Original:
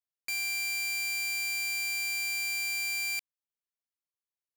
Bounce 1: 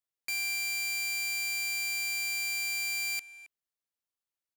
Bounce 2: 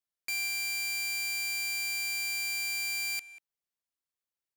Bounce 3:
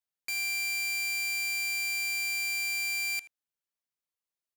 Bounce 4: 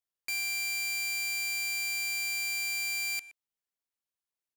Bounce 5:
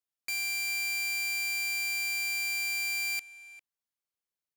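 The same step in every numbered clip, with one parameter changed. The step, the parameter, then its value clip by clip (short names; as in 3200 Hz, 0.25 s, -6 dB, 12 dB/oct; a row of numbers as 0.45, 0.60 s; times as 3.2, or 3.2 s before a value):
speakerphone echo, time: 270, 190, 80, 120, 400 ms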